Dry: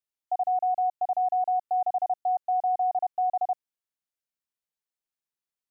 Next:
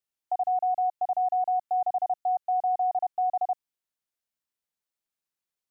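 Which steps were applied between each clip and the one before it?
dynamic bell 440 Hz, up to -3 dB, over -37 dBFS, Q 0.73; trim +1.5 dB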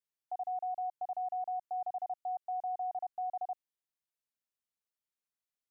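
peak limiter -25 dBFS, peak gain reduction 5 dB; trim -7 dB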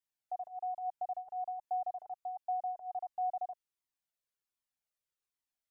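Shepard-style flanger falling 1.3 Hz; trim +3.5 dB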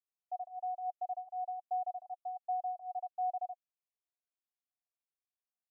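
vowel filter a

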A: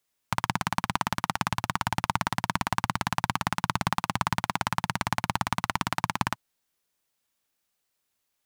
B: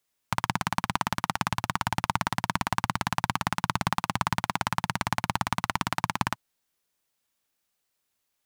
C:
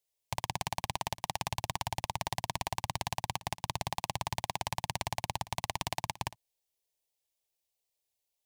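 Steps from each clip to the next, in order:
no audible change
static phaser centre 560 Hz, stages 4; level held to a coarse grid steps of 17 dB

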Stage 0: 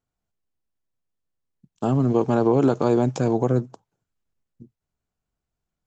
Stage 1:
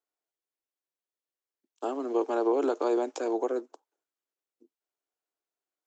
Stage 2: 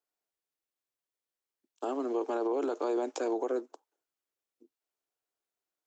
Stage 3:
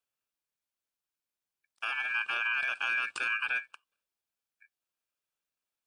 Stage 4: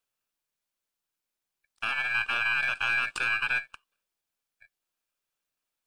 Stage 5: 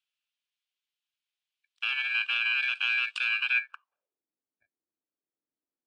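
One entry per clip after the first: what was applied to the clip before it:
steep high-pass 300 Hz 48 dB/octave; trim -5.5 dB
peak limiter -23.5 dBFS, peak gain reduction 7.5 dB
ring modulator 2 kHz; trim +2.5 dB
partial rectifier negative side -3 dB; trim +5 dB
band-pass sweep 3.1 kHz -> 300 Hz, 3.50–4.23 s; trim +5.5 dB

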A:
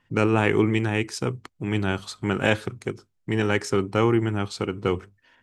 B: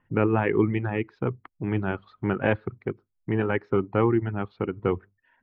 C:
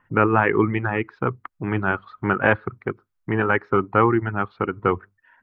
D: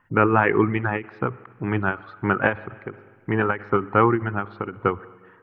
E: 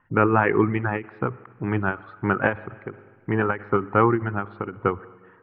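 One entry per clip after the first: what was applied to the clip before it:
Bessel low-pass 1.6 kHz, order 6; reverb removal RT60 0.69 s
peaking EQ 1.3 kHz +11 dB 1.3 oct; trim +1.5 dB
spring tank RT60 1.7 s, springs 49/59 ms, chirp 20 ms, DRR 20 dB; endings held to a fixed fall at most 210 dB/s
distance through air 240 m

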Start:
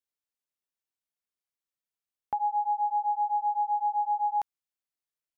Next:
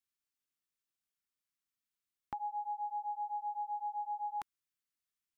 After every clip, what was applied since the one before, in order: high-order bell 620 Hz -11.5 dB 1.3 oct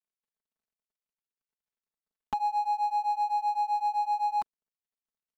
median filter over 25 samples; comb 4.6 ms, depth 92%; trim +8 dB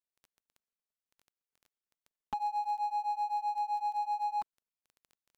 crackle 13 per s -41 dBFS; trim -5 dB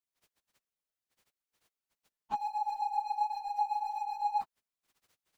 phase randomisation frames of 50 ms

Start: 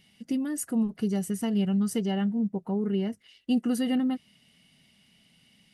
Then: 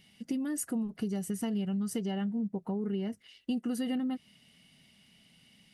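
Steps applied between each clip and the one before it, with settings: compression 5:1, threshold -30 dBFS, peak gain reduction 8.5 dB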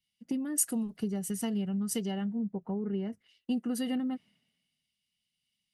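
three bands expanded up and down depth 100%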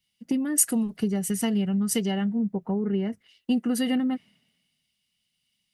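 dynamic bell 2.1 kHz, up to +4 dB, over -59 dBFS, Q 1.8; trim +7 dB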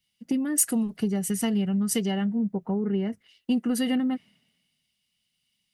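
saturation -11 dBFS, distortion -26 dB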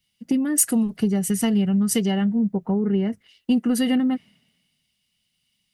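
bass shelf 170 Hz +4 dB; trim +3.5 dB

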